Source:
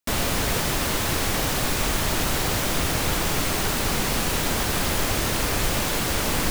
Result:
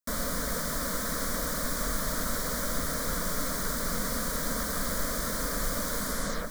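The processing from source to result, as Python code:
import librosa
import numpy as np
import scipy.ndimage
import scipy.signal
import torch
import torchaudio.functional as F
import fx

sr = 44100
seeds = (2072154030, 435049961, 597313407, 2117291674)

y = fx.tape_stop_end(x, sr, length_s=0.51)
y = fx.fixed_phaser(y, sr, hz=540.0, stages=8)
y = y + 10.0 ** (-10.5 / 20.0) * np.pad(y, (int(647 * sr / 1000.0), 0))[:len(y)]
y = F.gain(torch.from_numpy(y), -5.0).numpy()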